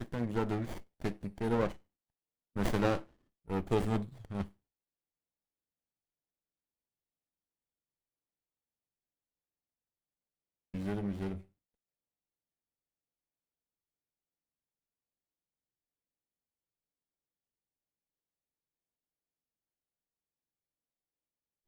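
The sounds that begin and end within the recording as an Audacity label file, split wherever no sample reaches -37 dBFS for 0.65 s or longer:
2.560000	4.440000	sound
10.740000	11.360000	sound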